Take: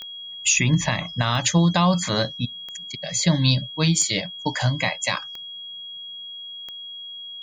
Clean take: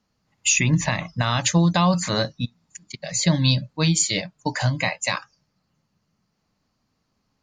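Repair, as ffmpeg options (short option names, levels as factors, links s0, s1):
-af "adeclick=t=4,bandreject=f=3300:w=30"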